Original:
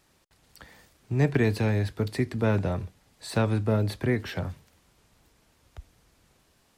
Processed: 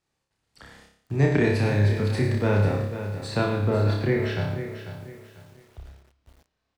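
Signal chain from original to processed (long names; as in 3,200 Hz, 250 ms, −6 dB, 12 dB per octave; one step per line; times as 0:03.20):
single-tap delay 106 ms −10 dB
noise gate −54 dBFS, range −16 dB
low-pass filter 9,400 Hz 12 dB per octave, from 0:03.28 4,600 Hz
flutter between parallel walls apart 5.1 metres, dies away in 0.58 s
feedback echo at a low word length 494 ms, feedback 35%, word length 8 bits, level −10.5 dB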